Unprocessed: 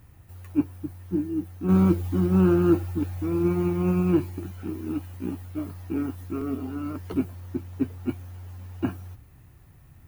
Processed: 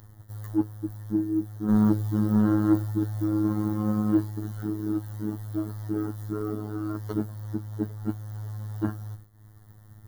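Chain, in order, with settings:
downward expander −41 dBFS
in parallel at −3 dB: upward compression, threshold −25 dBFS
on the sum: soft clipping −8.5 dBFS, distortion −19 dB
phases set to zero 106 Hz
Butterworth band-reject 2,500 Hz, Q 1.8
level −2 dB

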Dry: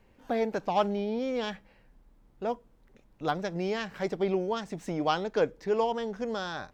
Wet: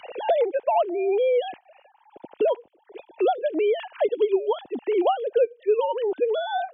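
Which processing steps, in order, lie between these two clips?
three sine waves on the formant tracks
flat-topped bell 1,500 Hz −10.5 dB 1.2 octaves
multiband upward and downward compressor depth 100%
level +7.5 dB

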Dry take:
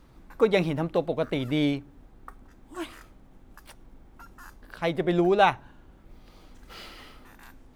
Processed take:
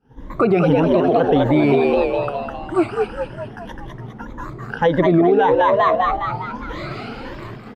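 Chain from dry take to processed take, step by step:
rippled gain that drifts along the octave scale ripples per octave 1.1, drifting +1.7 Hz, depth 18 dB
echo with shifted repeats 204 ms, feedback 55%, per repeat +96 Hz, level −4 dB
downward compressor 3 to 1, threshold −22 dBFS, peak gain reduction 9 dB
high-pass filter 450 Hz 6 dB per octave
spectral tilt −4 dB per octave
downward expander −44 dBFS
high-shelf EQ 6,800 Hz −5.5 dB, from 0:02.90 −11 dB
boost into a limiter +18.5 dB
wow of a warped record 78 rpm, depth 100 cents
level −6 dB

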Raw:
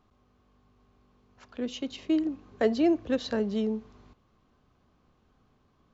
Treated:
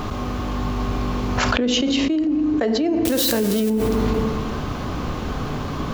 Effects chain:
0:03.05–0:03.70: spike at every zero crossing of −24.5 dBFS
feedback delay network reverb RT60 1.2 s, low-frequency decay 1.5×, high-frequency decay 0.65×, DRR 10.5 dB
envelope flattener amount 100%

